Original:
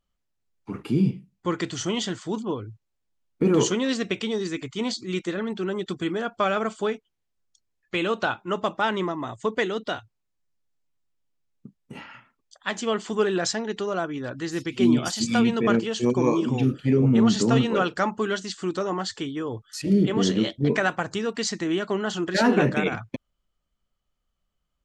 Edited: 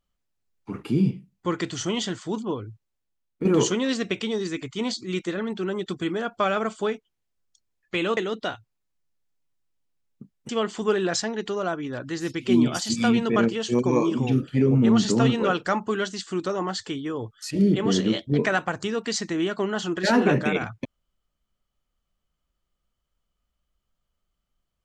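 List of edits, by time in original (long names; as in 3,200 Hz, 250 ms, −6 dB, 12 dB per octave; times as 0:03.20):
0:02.68–0:03.45: fade out, to −7 dB
0:08.17–0:09.61: remove
0:11.93–0:12.80: remove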